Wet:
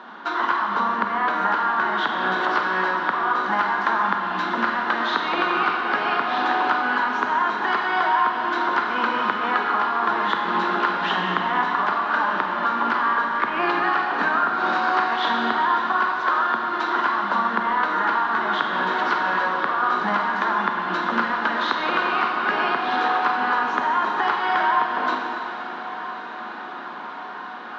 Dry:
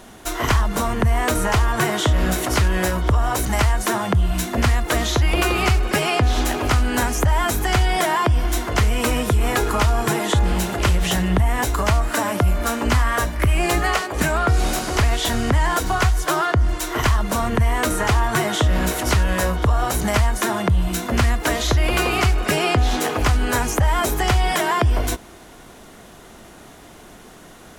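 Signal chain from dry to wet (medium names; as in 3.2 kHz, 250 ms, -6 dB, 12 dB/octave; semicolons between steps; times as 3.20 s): elliptic band-pass 220–4000 Hz, stop band 40 dB; high-order bell 1.2 kHz +12.5 dB 1.2 oct; compression, threshold -18 dBFS, peak gain reduction 11.5 dB; echo that smears into a reverb 1228 ms, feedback 71%, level -14.5 dB; Schroeder reverb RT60 2.6 s, combs from 31 ms, DRR 1 dB; trim -2.5 dB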